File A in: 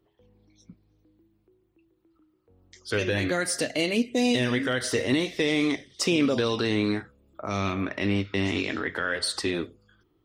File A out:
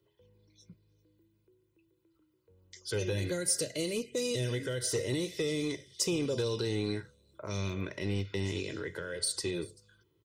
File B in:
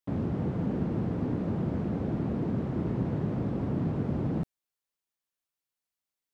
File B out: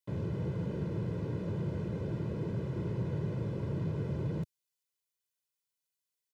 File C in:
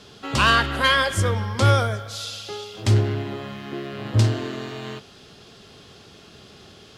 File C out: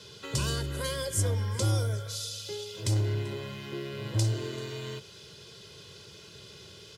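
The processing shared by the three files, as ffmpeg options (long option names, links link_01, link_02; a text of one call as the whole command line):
ffmpeg -i in.wav -filter_complex "[0:a]highpass=110,equalizer=frequency=820:width_type=o:width=2.7:gain=-9,aecho=1:1:2:0.76,acrossover=split=550|5600[link_01][link_02][link_03];[link_01]asoftclip=type=tanh:threshold=-23.5dB[link_04];[link_02]acompressor=threshold=-42dB:ratio=6[link_05];[link_03]aecho=1:1:388:0.0841[link_06];[link_04][link_05][link_06]amix=inputs=3:normalize=0" out.wav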